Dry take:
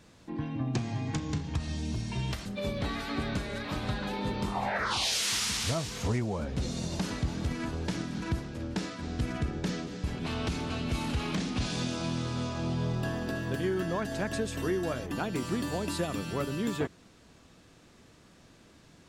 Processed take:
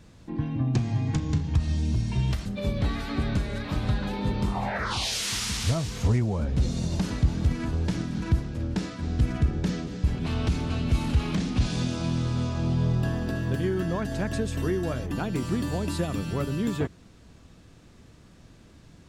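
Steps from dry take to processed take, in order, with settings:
low-shelf EQ 170 Hz +12 dB

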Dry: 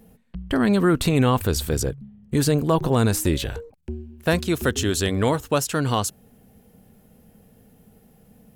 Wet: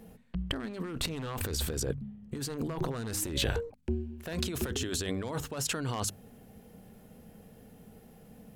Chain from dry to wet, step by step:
wave folding −12 dBFS
low-shelf EQ 170 Hz −2.5 dB
compressor whose output falls as the input rises −29 dBFS, ratio −1
high-shelf EQ 9,500 Hz −7 dB
mains-hum notches 50/100/150/200/250 Hz
level −4 dB

